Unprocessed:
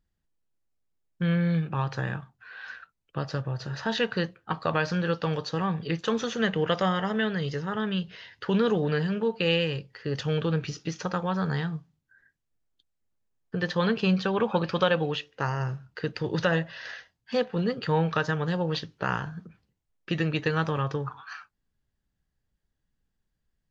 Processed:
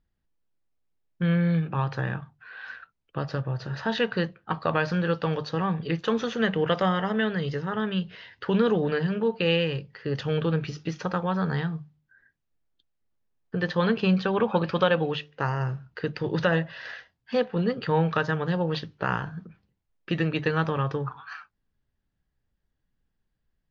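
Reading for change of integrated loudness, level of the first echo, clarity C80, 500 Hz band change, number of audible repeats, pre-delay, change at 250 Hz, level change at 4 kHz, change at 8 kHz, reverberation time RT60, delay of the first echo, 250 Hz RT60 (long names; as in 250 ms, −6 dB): +1.5 dB, no echo audible, no reverb audible, +1.5 dB, no echo audible, no reverb audible, +1.5 dB, −1.0 dB, can't be measured, no reverb audible, no echo audible, no reverb audible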